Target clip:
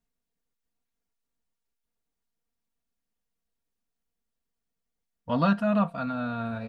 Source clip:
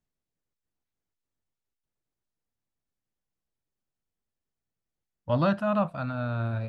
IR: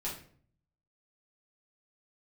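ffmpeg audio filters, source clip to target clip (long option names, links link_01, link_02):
-af "aecho=1:1:4.3:0.66"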